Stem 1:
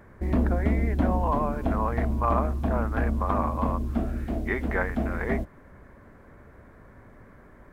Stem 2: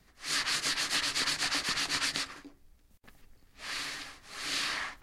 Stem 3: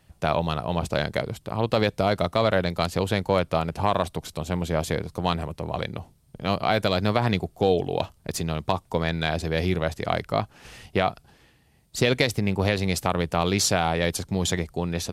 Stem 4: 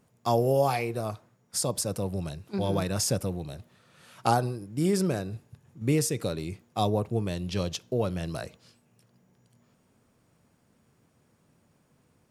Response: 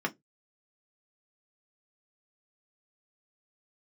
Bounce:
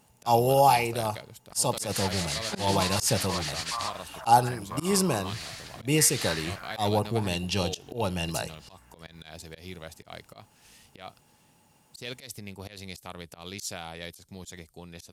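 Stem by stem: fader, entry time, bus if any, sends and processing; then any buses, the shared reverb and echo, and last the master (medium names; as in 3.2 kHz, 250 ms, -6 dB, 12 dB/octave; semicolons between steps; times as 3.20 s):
-9.0 dB, 1.50 s, no send, inverse Chebyshev high-pass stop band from 360 Hz, stop band 40 dB; hum 60 Hz, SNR 15 dB
-9.5 dB, 1.65 s, no send, none
-18.0 dB, 0.00 s, no send, treble shelf 5.7 kHz +7.5 dB
0.0 dB, 0.00 s, no send, small resonant body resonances 850/2800 Hz, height 14 dB, ringing for 35 ms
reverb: none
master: treble shelf 2.6 kHz +10 dB; slow attack 127 ms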